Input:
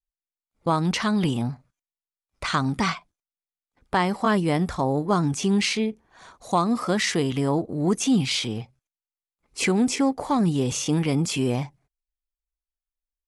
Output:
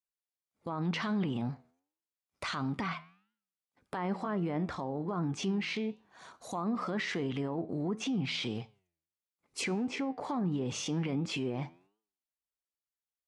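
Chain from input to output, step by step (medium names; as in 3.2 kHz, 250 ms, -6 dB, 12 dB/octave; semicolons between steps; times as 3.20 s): low-pass that closes with the level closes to 1.6 kHz, closed at -17 dBFS; high-pass 120 Hz 12 dB/octave; peak limiter -21.5 dBFS, peak gain reduction 12 dB; flange 1.5 Hz, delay 8.9 ms, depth 3.7 ms, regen +88%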